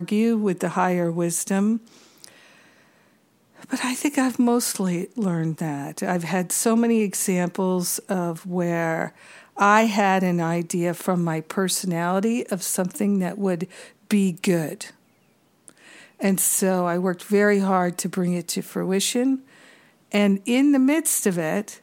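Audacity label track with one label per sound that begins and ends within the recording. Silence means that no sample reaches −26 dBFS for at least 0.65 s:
3.730000	14.830000	sound
15.680000	19.360000	sound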